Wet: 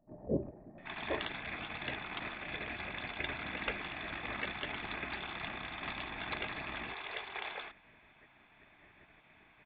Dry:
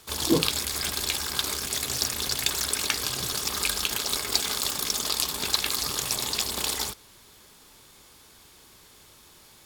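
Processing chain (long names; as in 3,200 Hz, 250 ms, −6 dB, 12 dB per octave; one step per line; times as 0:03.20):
formant resonators in series e
multiband delay without the direct sound lows, highs 780 ms, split 540 Hz
gate on every frequency bin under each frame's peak −10 dB weak
level +16.5 dB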